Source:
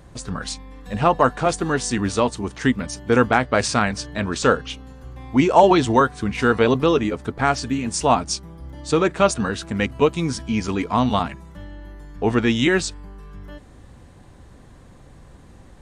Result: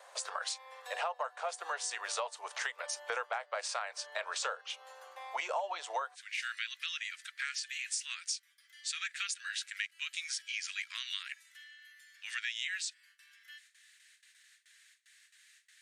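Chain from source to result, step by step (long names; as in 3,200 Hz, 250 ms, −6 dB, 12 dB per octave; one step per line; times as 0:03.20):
Butterworth high-pass 550 Hz 48 dB per octave, from 0:06.14 1,700 Hz
noise gate with hold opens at −52 dBFS
downward compressor 8 to 1, threshold −34 dBFS, peak gain reduction 25 dB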